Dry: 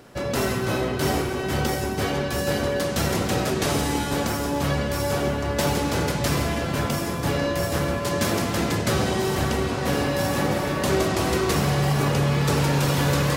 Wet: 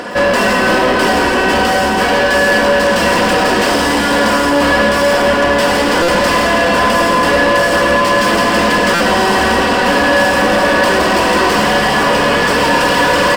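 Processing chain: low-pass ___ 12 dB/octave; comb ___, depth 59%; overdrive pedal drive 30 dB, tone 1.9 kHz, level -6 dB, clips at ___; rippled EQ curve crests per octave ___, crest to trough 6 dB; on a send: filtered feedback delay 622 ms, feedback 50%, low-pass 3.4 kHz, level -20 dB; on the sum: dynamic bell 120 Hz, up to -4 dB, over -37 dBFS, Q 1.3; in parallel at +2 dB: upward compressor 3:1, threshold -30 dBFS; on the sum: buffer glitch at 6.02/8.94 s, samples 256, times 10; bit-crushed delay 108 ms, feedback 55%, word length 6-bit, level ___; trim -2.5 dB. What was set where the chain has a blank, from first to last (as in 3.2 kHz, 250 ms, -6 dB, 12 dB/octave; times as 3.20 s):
11 kHz, 4.1 ms, -9 dBFS, 1.3, -9.5 dB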